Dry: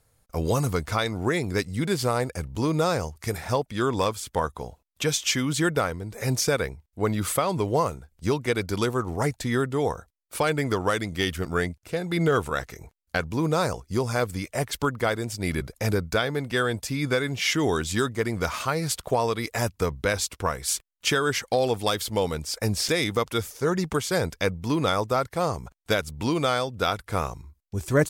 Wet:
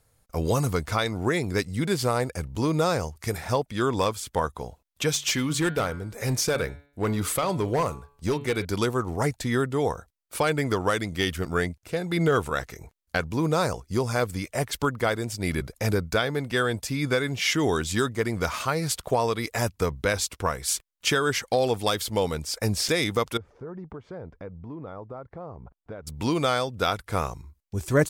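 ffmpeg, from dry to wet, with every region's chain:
ffmpeg -i in.wav -filter_complex "[0:a]asettb=1/sr,asplit=3[link_01][link_02][link_03];[link_01]atrim=end=5.114[link_04];[link_02]atrim=start=5.11:end=8.65,asetpts=PTS-STARTPTS,afade=type=in:duration=0.004:curve=qsin,afade=type=out:start_time=3.536:duration=0.004:curve=qsin,bandreject=frequency=142.9:width_type=h:width=4,bandreject=frequency=285.8:width_type=h:width=4,bandreject=frequency=428.7:width_type=h:width=4,bandreject=frequency=571.6:width_type=h:width=4,bandreject=frequency=714.5:width_type=h:width=4,bandreject=frequency=857.4:width_type=h:width=4,bandreject=frequency=1000.3:width_type=h:width=4,bandreject=frequency=1143.2:width_type=h:width=4,bandreject=frequency=1286.1:width_type=h:width=4,bandreject=frequency=1429:width_type=h:width=4,bandreject=frequency=1571.9:width_type=h:width=4,bandreject=frequency=1714.8:width_type=h:width=4,bandreject=frequency=1857.7:width_type=h:width=4,bandreject=frequency=2000.6:width_type=h:width=4,bandreject=frequency=2143.5:width_type=h:width=4,bandreject=frequency=2286.4:width_type=h:width=4,bandreject=frequency=2429.3:width_type=h:width=4,bandreject=frequency=2572.2:width_type=h:width=4,bandreject=frequency=2715.1:width_type=h:width=4,bandreject=frequency=2858:width_type=h:width=4,bandreject=frequency=3000.9:width_type=h:width=4,bandreject=frequency=3143.8:width_type=h:width=4,bandreject=frequency=3286.7:width_type=h:width=4,bandreject=frequency=3429.6:width_type=h:width=4,bandreject=frequency=3572.5:width_type=h:width=4,bandreject=frequency=3715.4:width_type=h:width=4,bandreject=frequency=3858.3:width_type=h:width=4,bandreject=frequency=4001.2:width_type=h:width=4,bandreject=frequency=4144.1:width_type=h:width=4,bandreject=frequency=4287:width_type=h:width=4,bandreject=frequency=4429.9:width_type=h:width=4,asoftclip=type=hard:threshold=-19dB[link_05];[link_03]atrim=start=8.646[link_06];[link_04][link_05]acrossfade=duration=0.004:curve1=hsin:curve2=qsin[link_07];[link_07][link_06]acrossfade=duration=0.004:curve1=qsin:curve2=hsin,asettb=1/sr,asplit=3[link_08][link_09][link_10];[link_08]atrim=end=23.374[link_11];[link_09]atrim=start=23.37:end=26.07,asetpts=PTS-STARTPTS,afade=type=in:duration=0.004:curve=qsin,afade=type=out:start_time=2.696:duration=0.004:curve=qsin,lowpass=1000,acompressor=threshold=-41dB:ratio=2.5:attack=3.2:release=140:knee=1:detection=peak[link_12];[link_10]atrim=start=26.066[link_13];[link_11][link_12]acrossfade=duration=0.004:curve1=hsin:curve2=qsin[link_14];[link_14][link_13]acrossfade=duration=0.004:curve1=qsin:curve2=hsin" out.wav

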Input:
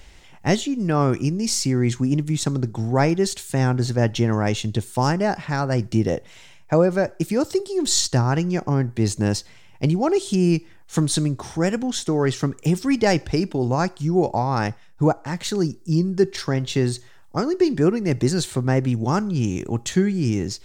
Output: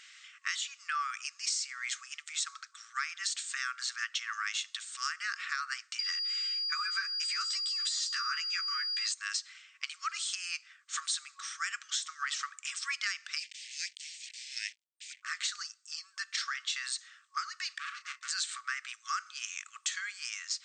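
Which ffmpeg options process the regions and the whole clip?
ffmpeg -i in.wav -filter_complex "[0:a]asettb=1/sr,asplit=3[link_01][link_02][link_03];[link_01]atrim=end=5.994[link_04];[link_02]atrim=start=5.99:end=9.12,asetpts=PTS-STARTPTS,afade=type=in:duration=0.004:curve=qsin,afade=type=out:start_time=3.126:duration=0.004:curve=qsin,deesser=0.5,aeval=exprs='val(0)+0.0631*sin(2*PI*4800*n/s)':channel_layout=same,asplit=2[link_05][link_06];[link_06]adelay=12,volume=-2.5dB[link_07];[link_05][link_07]amix=inputs=2:normalize=0,atrim=end_sample=138033[link_08];[link_03]atrim=start=9.116[link_09];[link_04][link_08]acrossfade=duration=0.004:curve1=hsin:curve2=qsin[link_10];[link_10][link_09]acrossfade=duration=0.004:curve1=qsin:curve2=hsin,asettb=1/sr,asplit=3[link_11][link_12][link_13];[link_11]atrim=end=13.384[link_14];[link_12]atrim=start=13.38:end=15.23,asetpts=PTS-STARTPTS,afade=type=in:duration=0.004:curve=qsin,afade=type=out:start_time=1.846:duration=0.004:curve=qsin,acrusher=bits=5:mix=0:aa=0.5,asuperstop=centerf=1100:order=8:qfactor=0.75[link_15];[link_13]atrim=start=15.226[link_16];[link_14][link_15]acrossfade=duration=0.004:curve1=hsin:curve2=qsin[link_17];[link_17][link_16]acrossfade=duration=0.004:curve1=qsin:curve2=hsin,asettb=1/sr,asplit=3[link_18][link_19][link_20];[link_18]atrim=end=17.784[link_21];[link_19]atrim=start=17.78:end=18.31,asetpts=PTS-STARTPTS,afade=type=in:duration=0.004:curve=qsin,afade=type=out:start_time=0.526:duration=0.004:curve=qsin,agate=range=-33dB:threshold=-21dB:ratio=3:release=100:detection=peak,volume=26.5dB,asoftclip=hard,volume=-26.5dB,asplit=2[link_22][link_23];[link_23]adelay=30,volume=-10dB[link_24];[link_22][link_24]amix=inputs=2:normalize=0,atrim=end_sample=23373[link_25];[link_20]atrim=start=18.306[link_26];[link_21][link_25]acrossfade=duration=0.004:curve1=hsin:curve2=qsin[link_27];[link_27][link_26]acrossfade=duration=0.004:curve1=qsin:curve2=hsin,afftfilt=real='re*between(b*sr/4096,1100,8700)':imag='im*between(b*sr/4096,1100,8700)':win_size=4096:overlap=0.75,acompressor=threshold=-30dB:ratio=10" out.wav

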